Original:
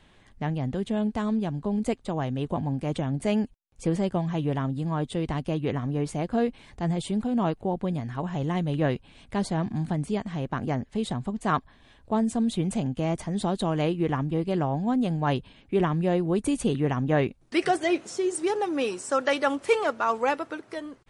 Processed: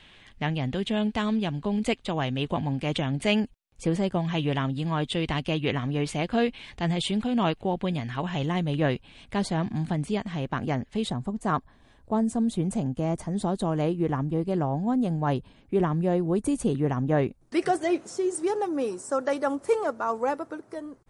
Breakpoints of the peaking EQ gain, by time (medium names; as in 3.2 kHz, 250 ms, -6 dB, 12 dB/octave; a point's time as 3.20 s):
peaking EQ 2.9 kHz 1.6 oct
+11.5 dB
from 3.40 s +3.5 dB
from 4.25 s +11.5 dB
from 8.46 s +4.5 dB
from 11.10 s -7 dB
from 18.67 s -13.5 dB